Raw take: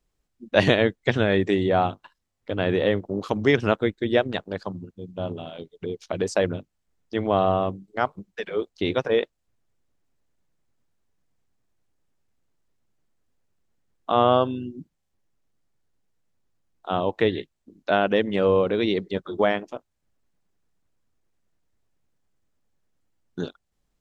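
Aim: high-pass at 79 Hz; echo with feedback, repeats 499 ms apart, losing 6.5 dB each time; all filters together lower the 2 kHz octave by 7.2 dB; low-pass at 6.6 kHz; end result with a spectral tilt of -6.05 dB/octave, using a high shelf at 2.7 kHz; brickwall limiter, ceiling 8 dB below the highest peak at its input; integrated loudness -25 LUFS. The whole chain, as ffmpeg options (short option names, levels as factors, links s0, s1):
-af "highpass=79,lowpass=6600,equalizer=f=2000:t=o:g=-7,highshelf=f=2700:g=-5.5,alimiter=limit=0.224:level=0:latency=1,aecho=1:1:499|998|1497|1996|2495|2994:0.473|0.222|0.105|0.0491|0.0231|0.0109,volume=1.26"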